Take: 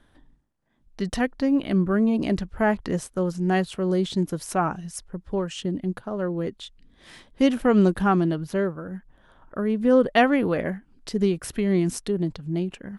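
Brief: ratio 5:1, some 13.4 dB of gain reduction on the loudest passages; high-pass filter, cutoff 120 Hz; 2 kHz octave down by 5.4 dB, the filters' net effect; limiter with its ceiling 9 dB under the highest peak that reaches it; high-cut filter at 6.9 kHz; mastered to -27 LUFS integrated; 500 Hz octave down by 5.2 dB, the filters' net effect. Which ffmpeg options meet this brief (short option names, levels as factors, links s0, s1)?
-af "highpass=120,lowpass=6900,equalizer=f=500:t=o:g=-6.5,equalizer=f=2000:t=o:g=-6.5,acompressor=threshold=0.0251:ratio=5,volume=3.76,alimiter=limit=0.119:level=0:latency=1"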